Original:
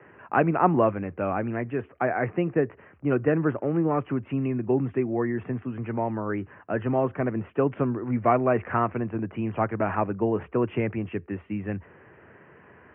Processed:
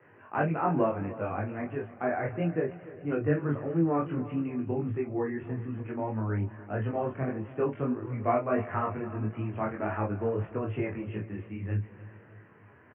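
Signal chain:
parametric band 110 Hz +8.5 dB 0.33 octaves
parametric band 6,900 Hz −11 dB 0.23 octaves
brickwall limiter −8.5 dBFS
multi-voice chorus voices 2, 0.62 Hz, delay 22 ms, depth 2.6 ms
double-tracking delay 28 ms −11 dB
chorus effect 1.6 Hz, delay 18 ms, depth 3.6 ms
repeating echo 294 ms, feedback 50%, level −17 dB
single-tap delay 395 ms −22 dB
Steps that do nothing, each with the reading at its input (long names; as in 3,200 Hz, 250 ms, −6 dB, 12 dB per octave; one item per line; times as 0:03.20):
parametric band 6,900 Hz: nothing at its input above 1,800 Hz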